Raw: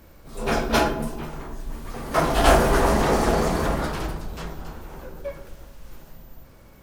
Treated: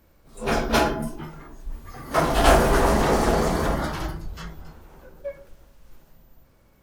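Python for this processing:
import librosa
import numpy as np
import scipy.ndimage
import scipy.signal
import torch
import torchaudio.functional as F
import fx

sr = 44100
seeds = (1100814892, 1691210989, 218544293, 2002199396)

y = fx.noise_reduce_blind(x, sr, reduce_db=9)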